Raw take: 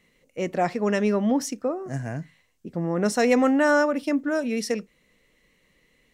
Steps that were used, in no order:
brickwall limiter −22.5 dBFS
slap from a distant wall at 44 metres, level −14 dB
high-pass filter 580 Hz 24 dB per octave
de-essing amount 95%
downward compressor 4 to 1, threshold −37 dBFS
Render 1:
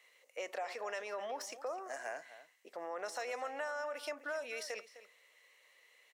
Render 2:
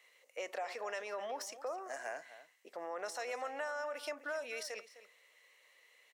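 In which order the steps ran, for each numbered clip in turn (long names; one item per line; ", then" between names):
brickwall limiter, then high-pass filter, then de-essing, then downward compressor, then slap from a distant wall
brickwall limiter, then high-pass filter, then downward compressor, then de-essing, then slap from a distant wall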